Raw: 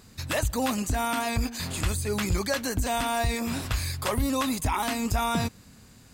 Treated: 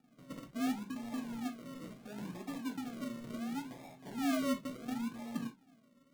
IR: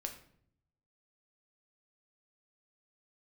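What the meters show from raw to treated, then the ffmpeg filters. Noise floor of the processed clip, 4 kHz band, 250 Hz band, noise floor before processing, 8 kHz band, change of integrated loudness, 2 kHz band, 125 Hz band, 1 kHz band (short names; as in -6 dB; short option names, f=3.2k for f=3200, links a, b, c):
-67 dBFS, -17.0 dB, -6.5 dB, -53 dBFS, -20.0 dB, -12.0 dB, -16.0 dB, -21.5 dB, -17.0 dB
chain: -filter_complex "[0:a]asplit=3[a][b][c];[a]bandpass=f=270:t=q:w=8,volume=0dB[d];[b]bandpass=f=2.29k:t=q:w=8,volume=-6dB[e];[c]bandpass=f=3.01k:t=q:w=8,volume=-9dB[f];[d][e][f]amix=inputs=3:normalize=0,acrusher=samples=42:mix=1:aa=0.000001:lfo=1:lforange=25.2:lforate=0.71,lowshelf=f=110:t=q:w=3:g=-10[g];[1:a]atrim=start_sample=2205,afade=t=out:st=0.15:d=0.01,atrim=end_sample=7056,asetrate=66150,aresample=44100[h];[g][h]afir=irnorm=-1:irlink=0,volume=1.5dB"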